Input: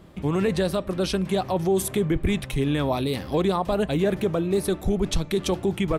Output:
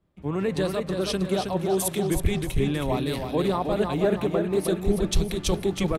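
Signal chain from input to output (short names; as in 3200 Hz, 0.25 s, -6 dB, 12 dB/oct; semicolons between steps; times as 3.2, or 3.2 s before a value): feedback echo 0.32 s, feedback 47%, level -4.5 dB; three-band expander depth 70%; gain -2.5 dB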